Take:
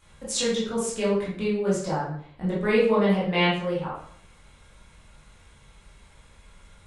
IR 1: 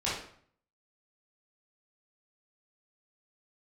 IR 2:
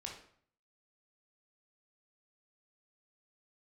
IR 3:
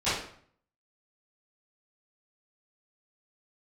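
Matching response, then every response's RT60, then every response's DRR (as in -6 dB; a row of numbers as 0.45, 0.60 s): 1; 0.55, 0.55, 0.55 s; -9.5, -1.0, -18.0 dB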